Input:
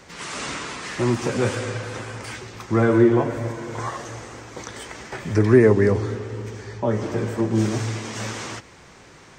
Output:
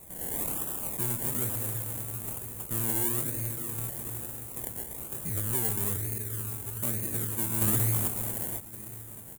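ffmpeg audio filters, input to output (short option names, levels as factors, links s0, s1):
-filter_complex "[0:a]bass=f=250:g=5,treble=f=4000:g=8,acompressor=threshold=0.126:ratio=2.5,equalizer=f=1300:w=0.55:g=-14,asoftclip=type=tanh:threshold=0.0668,asettb=1/sr,asplit=3[s0][s1][s2];[s0]atrim=end=7.614[s3];[s1]atrim=start=7.61:end=8.08,asetpts=PTS-STARTPTS,afade=t=in:d=0.004:c=qsin,afade=t=out:st=0.466:d=0.004:c=qsin,acontrast=71[s4];[s2]atrim=start=8.076[s5];[s3][s4]acrossfade=d=0.004:c1=hsin:c2=qsin[s6];[s6][s5]acrossfade=d=0.004:c1=qsin:c2=hsin,aecho=1:1:1121|2242|3363|4484:0.119|0.0618|0.0321|0.0167,acrusher=samples=28:mix=1:aa=0.000001:lfo=1:lforange=16.8:lforate=1.1,aexciter=amount=8.1:drive=9.4:freq=7600,volume=0.398"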